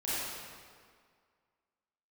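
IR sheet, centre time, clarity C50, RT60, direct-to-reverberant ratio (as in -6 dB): 151 ms, -6.0 dB, 2.0 s, -11.5 dB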